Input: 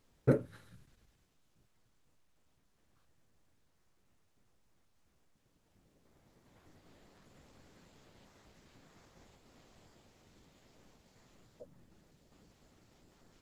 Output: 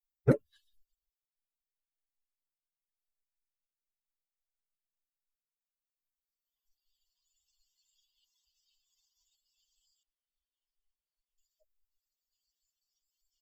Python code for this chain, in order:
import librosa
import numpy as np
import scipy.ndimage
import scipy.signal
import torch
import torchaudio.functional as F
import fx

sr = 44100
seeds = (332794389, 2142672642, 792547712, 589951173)

y = fx.bin_expand(x, sr, power=3.0)
y = fx.lowpass(y, sr, hz=1500.0, slope=12, at=(10.03, 11.38))
y = y * 10.0 ** (5.5 / 20.0)